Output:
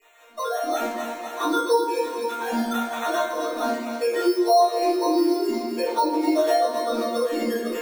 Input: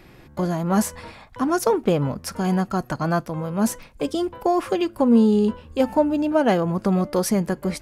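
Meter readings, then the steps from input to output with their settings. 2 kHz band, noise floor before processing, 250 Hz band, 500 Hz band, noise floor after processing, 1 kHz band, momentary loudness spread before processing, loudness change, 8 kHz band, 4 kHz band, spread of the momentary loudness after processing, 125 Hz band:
+1.0 dB, -48 dBFS, -5.0 dB, +0.5 dB, -36 dBFS, +3.5 dB, 9 LU, -1.5 dB, -4.0 dB, +4.0 dB, 8 LU, under -25 dB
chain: formants replaced by sine waves; gate -43 dBFS, range -8 dB; bass shelf 390 Hz -10 dB; hum notches 60/120/180/240/300/360 Hz; level rider gain up to 9 dB; sample-and-hold 9×; chord resonator A#3 sus4, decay 0.3 s; on a send: two-band feedback delay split 380 Hz, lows 84 ms, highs 254 ms, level -11 dB; on the sum: simulated room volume 110 m³, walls mixed, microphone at 3.4 m; three bands compressed up and down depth 70%; trim -3 dB

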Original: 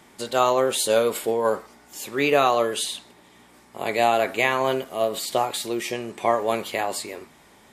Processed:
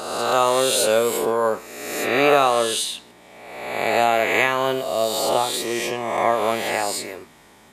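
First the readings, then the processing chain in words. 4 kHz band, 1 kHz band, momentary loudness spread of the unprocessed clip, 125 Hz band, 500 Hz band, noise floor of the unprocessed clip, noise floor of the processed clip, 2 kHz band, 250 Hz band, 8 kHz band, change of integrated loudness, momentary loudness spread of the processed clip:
+4.5 dB, +3.0 dB, 12 LU, +1.5 dB, +2.5 dB, -54 dBFS, -50 dBFS, +4.5 dB, +2.0 dB, +5.0 dB, +3.0 dB, 12 LU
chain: reverse spectral sustain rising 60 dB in 1.31 s

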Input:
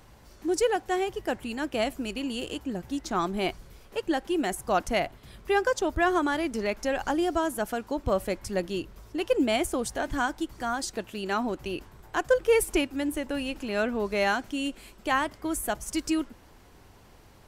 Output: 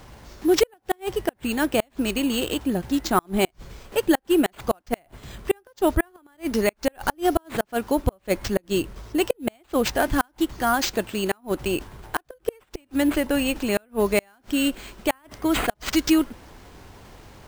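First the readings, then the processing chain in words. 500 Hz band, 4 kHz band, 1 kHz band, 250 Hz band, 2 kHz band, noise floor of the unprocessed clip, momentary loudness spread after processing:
+3.0 dB, +5.0 dB, +1.5 dB, +6.0 dB, +1.5 dB, -54 dBFS, 8 LU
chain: Chebyshev shaper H 4 -44 dB, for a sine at -12 dBFS; inverted gate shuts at -16 dBFS, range -38 dB; sample-and-hold 4×; trim +8.5 dB

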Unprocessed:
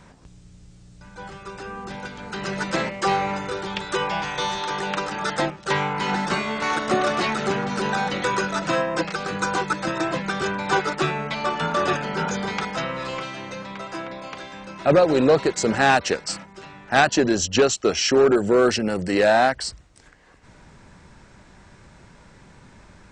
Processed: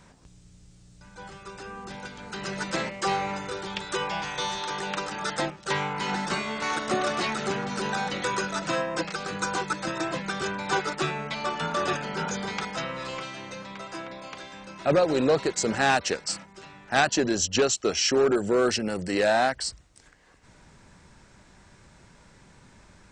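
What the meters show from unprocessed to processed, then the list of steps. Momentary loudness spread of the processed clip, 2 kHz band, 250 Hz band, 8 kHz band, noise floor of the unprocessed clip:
16 LU, -4.5 dB, -5.5 dB, -1.0 dB, -50 dBFS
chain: treble shelf 4.3 kHz +6.5 dB; trim -5.5 dB

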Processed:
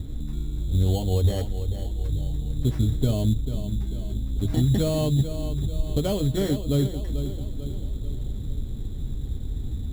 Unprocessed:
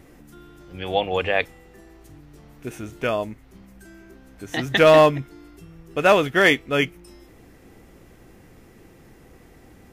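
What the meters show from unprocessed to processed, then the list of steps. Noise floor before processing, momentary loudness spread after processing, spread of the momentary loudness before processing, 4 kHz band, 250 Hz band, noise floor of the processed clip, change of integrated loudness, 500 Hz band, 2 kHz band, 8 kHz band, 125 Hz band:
-50 dBFS, 11 LU, 21 LU, -8.0 dB, +1.5 dB, -32 dBFS, -7.0 dB, -10.5 dB, -25.5 dB, +1.0 dB, +11.5 dB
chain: tilt EQ -4.5 dB/octave; compression 4:1, threshold -21 dBFS, peak gain reduction 13.5 dB; FFT filter 140 Hz 0 dB, 4.7 kHz -25 dB, 9.4 kHz +13 dB; bucket-brigade echo 442 ms, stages 4096, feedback 51%, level -10 dB; sample-rate reducer 3.7 kHz, jitter 0%; comb of notches 170 Hz; trim +5.5 dB

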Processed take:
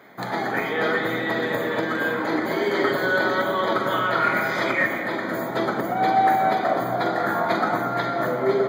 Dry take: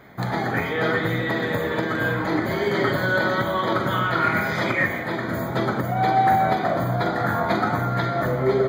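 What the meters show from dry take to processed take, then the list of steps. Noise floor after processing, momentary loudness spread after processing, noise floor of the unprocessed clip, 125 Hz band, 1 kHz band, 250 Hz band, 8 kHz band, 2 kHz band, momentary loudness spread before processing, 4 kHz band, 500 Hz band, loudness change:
-29 dBFS, 4 LU, -28 dBFS, -9.5 dB, +0.5 dB, -1.5 dB, 0.0 dB, 0.0 dB, 4 LU, 0.0 dB, +0.5 dB, 0.0 dB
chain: high-pass 250 Hz 12 dB/octave; on a send: filtered feedback delay 228 ms, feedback 79%, low-pass 1.1 kHz, level -8 dB

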